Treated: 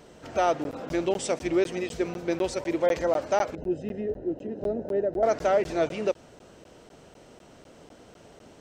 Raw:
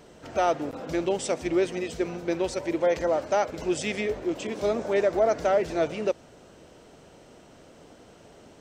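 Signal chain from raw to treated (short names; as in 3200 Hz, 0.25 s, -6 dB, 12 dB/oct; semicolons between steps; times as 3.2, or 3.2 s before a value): 3.55–5.23 running mean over 39 samples; crackling interface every 0.25 s, samples 512, zero, from 0.64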